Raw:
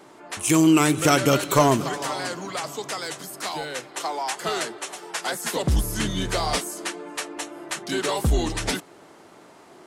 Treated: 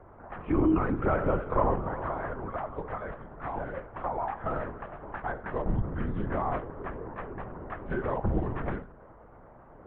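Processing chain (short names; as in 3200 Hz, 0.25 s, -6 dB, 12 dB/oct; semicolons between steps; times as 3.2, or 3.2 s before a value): LPF 1500 Hz 24 dB/oct; notches 60/120/180/240/300/360/420/480/540 Hz; compressor 1.5:1, threshold -28 dBFS, peak gain reduction 6 dB; on a send at -15 dB: reverb RT60 0.35 s, pre-delay 25 ms; on the sum: LPC vocoder at 8 kHz whisper; gain -2 dB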